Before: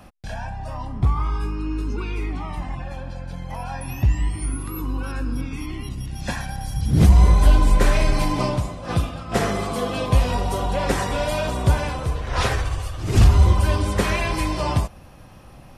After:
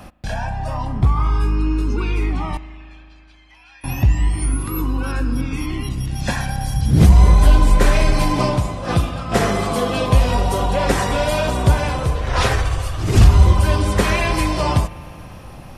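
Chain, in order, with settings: in parallel at -2 dB: compression, threshold -27 dBFS, peak gain reduction 17.5 dB; 2.57–3.84 s: on the sum: ladder band-pass 3 kHz, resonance 35%; spring tank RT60 2.8 s, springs 38 ms, chirp 55 ms, DRR 15.5 dB; trim +2 dB

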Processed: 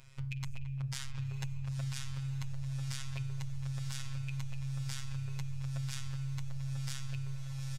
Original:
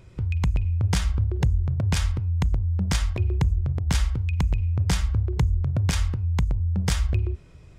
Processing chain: amplifier tone stack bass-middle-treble 10-0-10; speakerphone echo 220 ms, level -19 dB; peak limiter -26 dBFS, peak gain reduction 11.5 dB; robot voice 135 Hz; on a send: echo that smears into a reverb 977 ms, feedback 53%, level -7.5 dB; on the sum: compression, threshold -38 dBFS, peak gain reduction 7.5 dB; trim +4.5 dB

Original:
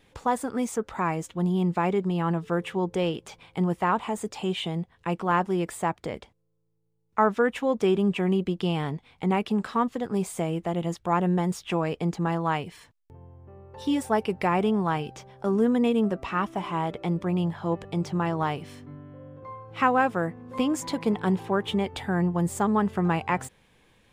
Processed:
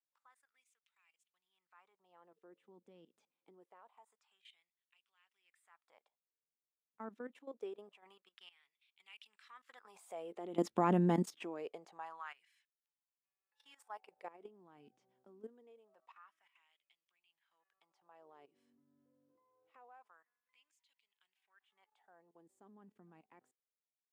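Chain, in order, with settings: Doppler pass-by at 10.85 s, 9 m/s, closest 1.6 m; level held to a coarse grid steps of 16 dB; LFO high-pass sine 0.25 Hz 230–2900 Hz; trim +1 dB

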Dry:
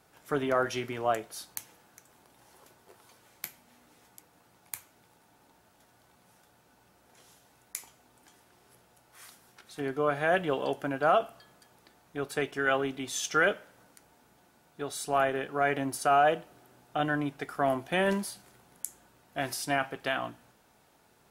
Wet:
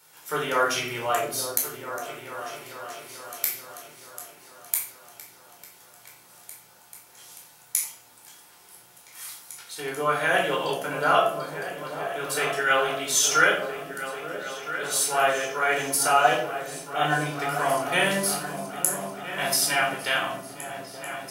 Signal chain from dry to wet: tilt EQ +3.5 dB/octave; on a send: delay with an opening low-pass 439 ms, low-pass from 200 Hz, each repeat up 2 oct, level -6 dB; on the sum: simulated room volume 780 m³, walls furnished, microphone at 4.5 m; trim -1 dB

